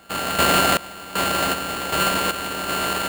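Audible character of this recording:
a buzz of ramps at a fixed pitch in blocks of 32 samples
sample-and-hold tremolo 2.6 Hz, depth 90%
aliases and images of a low sample rate 5,700 Hz, jitter 0%

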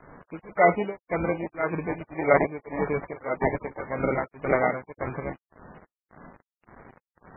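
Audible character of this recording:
aliases and images of a low sample rate 2,700 Hz, jitter 0%
tremolo triangle 1.8 Hz, depth 100%
a quantiser's noise floor 8 bits, dither none
MP3

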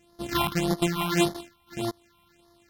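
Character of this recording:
a buzz of ramps at a fixed pitch in blocks of 128 samples
phaser sweep stages 6, 1.7 Hz, lowest notch 460–2,500 Hz
AAC

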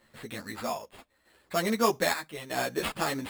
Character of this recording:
chopped level 0.8 Hz, depth 60%, duty 70%
aliases and images of a low sample rate 6,000 Hz, jitter 0%
a shimmering, thickened sound

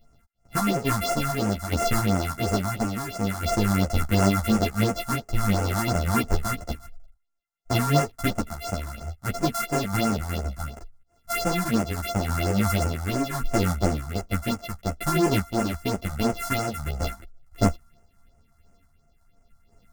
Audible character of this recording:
a buzz of ramps at a fixed pitch in blocks of 64 samples
phaser sweep stages 4, 2.9 Hz, lowest notch 430–3,800 Hz
sample-and-hold tremolo
a shimmering, thickened sound

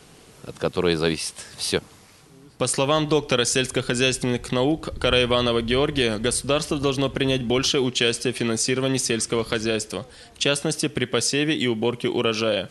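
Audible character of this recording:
background noise floor −50 dBFS
spectral slope −3.5 dB per octave

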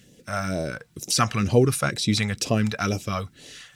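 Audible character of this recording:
a quantiser's noise floor 12 bits, dither none
phaser sweep stages 2, 2.1 Hz, lowest notch 320–1,400 Hz
Nellymoser

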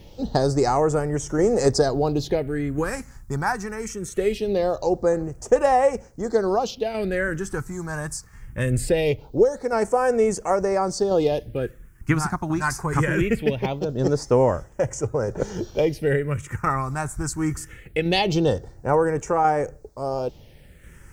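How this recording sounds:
tremolo saw down 0.72 Hz, depth 40%
a quantiser's noise floor 12 bits, dither triangular
phaser sweep stages 4, 0.22 Hz, lowest notch 500–3,900 Hz

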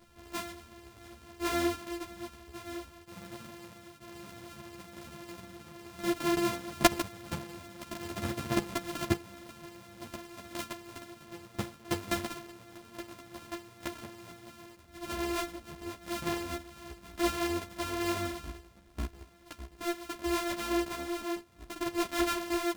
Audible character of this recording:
a buzz of ramps at a fixed pitch in blocks of 128 samples
tremolo saw down 0.5 Hz, depth 35%
a shimmering, thickened sound

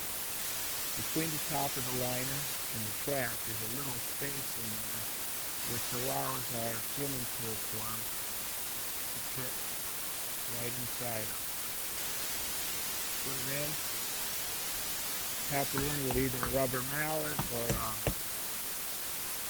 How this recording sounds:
phaser sweep stages 6, 2 Hz, lowest notch 520–1,400 Hz
tremolo saw down 2.6 Hz, depth 40%
a quantiser's noise floor 6 bits, dither triangular
Opus

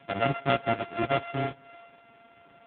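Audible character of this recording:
a buzz of ramps at a fixed pitch in blocks of 64 samples
AMR narrowband

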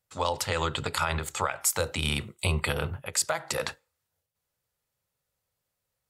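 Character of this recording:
background noise floor −84 dBFS
spectral slope −3.5 dB per octave

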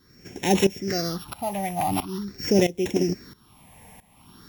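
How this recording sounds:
a buzz of ramps at a fixed pitch in blocks of 8 samples
phaser sweep stages 6, 0.45 Hz, lowest notch 350–1,300 Hz
a quantiser's noise floor 10 bits, dither none
tremolo saw up 1.5 Hz, depth 85%

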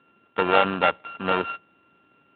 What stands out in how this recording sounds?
a buzz of ramps at a fixed pitch in blocks of 32 samples
Speex

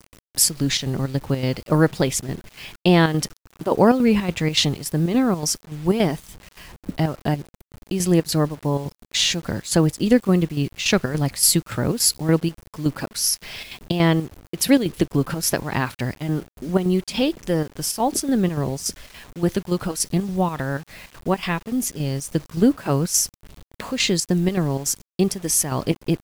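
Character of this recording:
chopped level 3.5 Hz, depth 60%, duty 70%
a quantiser's noise floor 8 bits, dither none

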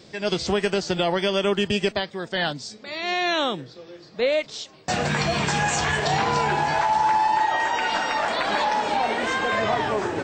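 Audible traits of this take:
background noise floor −48 dBFS
spectral slope −4.0 dB per octave

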